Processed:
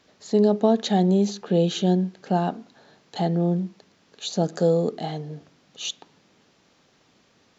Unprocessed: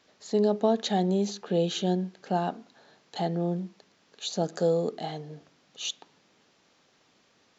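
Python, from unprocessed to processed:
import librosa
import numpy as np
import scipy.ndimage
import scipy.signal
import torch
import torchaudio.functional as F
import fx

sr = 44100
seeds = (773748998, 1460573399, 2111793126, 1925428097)

y = fx.low_shelf(x, sr, hz=270.0, db=7.0)
y = y * librosa.db_to_amplitude(2.5)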